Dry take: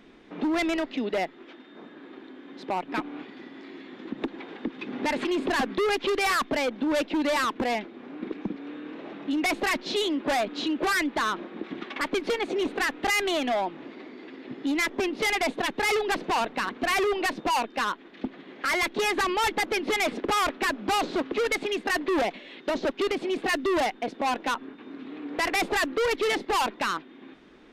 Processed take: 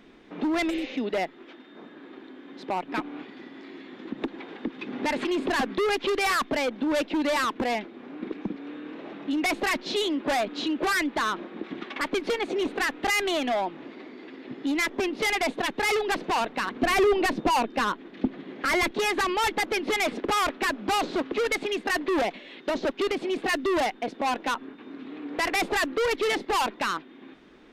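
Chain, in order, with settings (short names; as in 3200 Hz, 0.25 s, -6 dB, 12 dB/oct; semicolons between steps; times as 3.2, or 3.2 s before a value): 0.72–0.92 spectral repair 410–7200 Hz after; 16.74–18.91 low shelf 460 Hz +8.5 dB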